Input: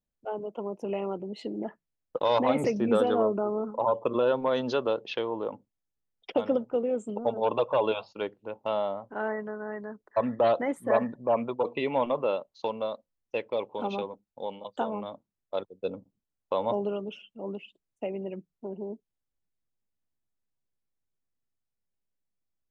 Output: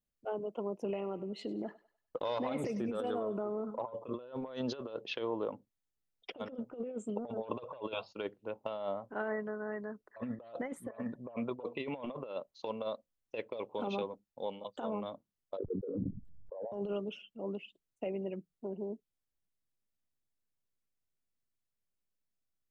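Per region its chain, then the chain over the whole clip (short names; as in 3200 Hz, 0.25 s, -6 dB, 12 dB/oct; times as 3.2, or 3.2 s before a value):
0.93–3.85 thinning echo 99 ms, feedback 43%, high-pass 770 Hz, level -17.5 dB + compressor 2:1, threshold -32 dBFS
15.57–16.72 formant sharpening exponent 3 + sustainer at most 27 dB/s
whole clip: bell 870 Hz -4 dB 0.28 oct; negative-ratio compressor -31 dBFS, ratio -0.5; gain -5.5 dB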